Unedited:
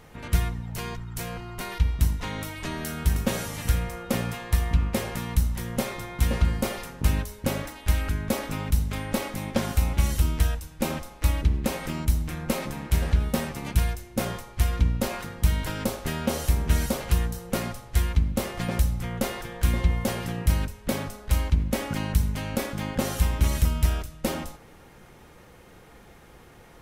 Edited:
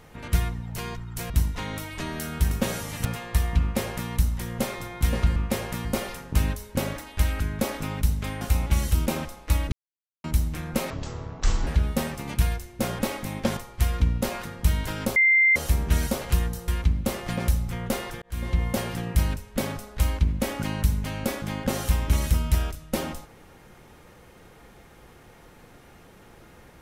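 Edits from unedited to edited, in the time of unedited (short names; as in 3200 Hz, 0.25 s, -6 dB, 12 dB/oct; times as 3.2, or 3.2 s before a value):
1.3–1.95 cut
3.7–4.23 cut
4.79–5.28 copy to 6.54
9.1–9.68 move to 14.36
10.33–10.8 cut
11.46–11.98 mute
12.64–13.04 speed 52%
15.95–16.35 bleep 2090 Hz -15 dBFS
17.47–17.99 cut
19.53–19.94 fade in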